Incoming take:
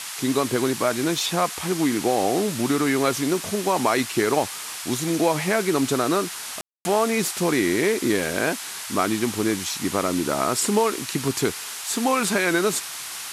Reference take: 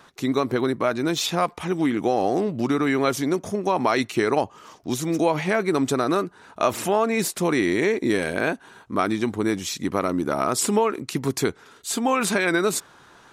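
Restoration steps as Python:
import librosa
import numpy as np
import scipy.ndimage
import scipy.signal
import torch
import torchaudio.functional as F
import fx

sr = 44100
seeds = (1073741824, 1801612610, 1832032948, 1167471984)

y = fx.fix_ambience(x, sr, seeds[0], print_start_s=12.8, print_end_s=13.3, start_s=6.61, end_s=6.85)
y = fx.noise_reduce(y, sr, print_start_s=12.8, print_end_s=13.3, reduce_db=16.0)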